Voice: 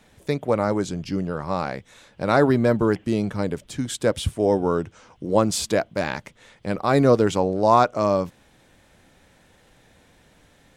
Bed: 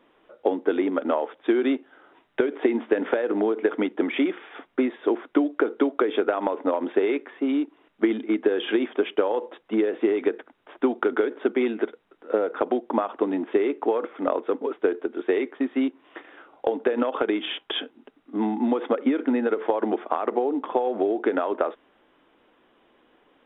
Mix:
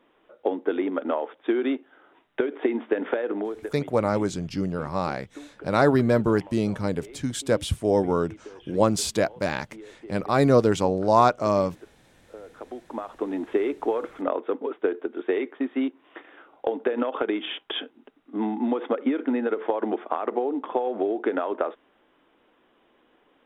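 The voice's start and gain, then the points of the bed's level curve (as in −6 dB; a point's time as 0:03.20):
3.45 s, −1.5 dB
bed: 0:03.28 −2.5 dB
0:04.02 −21.5 dB
0:12.29 −21.5 dB
0:13.42 −2 dB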